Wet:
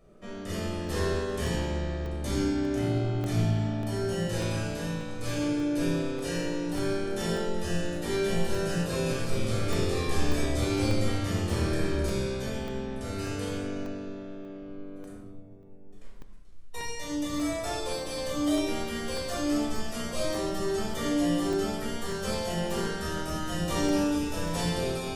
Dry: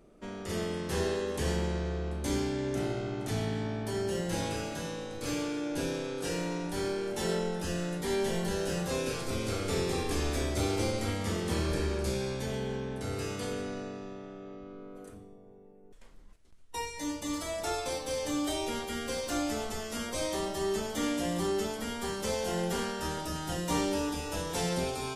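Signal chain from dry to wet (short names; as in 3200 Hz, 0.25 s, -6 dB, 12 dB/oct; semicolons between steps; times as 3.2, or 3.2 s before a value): reverb RT60 0.70 s, pre-delay 16 ms, DRR -2 dB; crackling interface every 0.59 s, samples 64, zero, from 0.88; gain -4 dB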